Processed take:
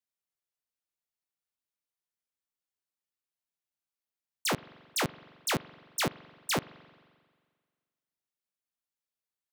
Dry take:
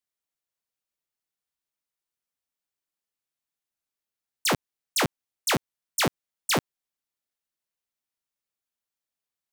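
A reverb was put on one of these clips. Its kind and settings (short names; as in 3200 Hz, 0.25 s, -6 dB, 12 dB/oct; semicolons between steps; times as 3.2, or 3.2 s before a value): spring tank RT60 1.7 s, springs 43 ms, chirp 20 ms, DRR 18 dB; gain -5.5 dB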